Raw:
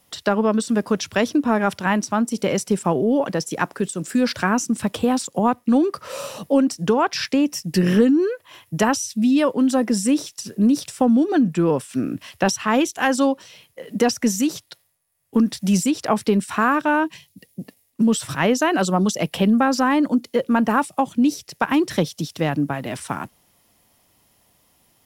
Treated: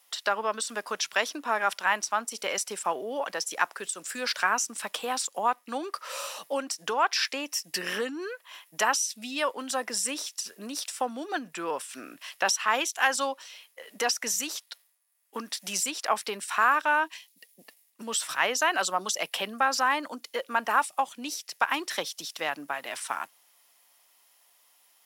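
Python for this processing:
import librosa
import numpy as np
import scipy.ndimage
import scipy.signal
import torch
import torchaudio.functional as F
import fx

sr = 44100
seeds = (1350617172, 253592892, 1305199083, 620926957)

y = scipy.signal.sosfilt(scipy.signal.butter(2, 910.0, 'highpass', fs=sr, output='sos'), x)
y = y * librosa.db_to_amplitude(-1.0)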